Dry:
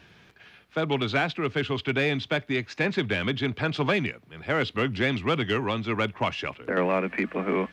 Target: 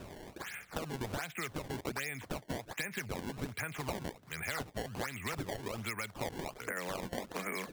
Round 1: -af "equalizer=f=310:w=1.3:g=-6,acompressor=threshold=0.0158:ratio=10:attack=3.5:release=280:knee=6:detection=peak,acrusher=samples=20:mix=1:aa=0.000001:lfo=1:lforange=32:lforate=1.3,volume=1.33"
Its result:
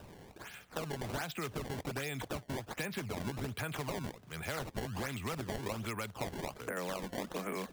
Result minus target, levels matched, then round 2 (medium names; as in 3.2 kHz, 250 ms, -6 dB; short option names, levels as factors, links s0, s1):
2 kHz band -2.5 dB
-af "lowpass=f=2100:t=q:w=3.7,equalizer=f=310:w=1.3:g=-6,acompressor=threshold=0.0158:ratio=10:attack=3.5:release=280:knee=6:detection=peak,acrusher=samples=20:mix=1:aa=0.000001:lfo=1:lforange=32:lforate=1.3,volume=1.33"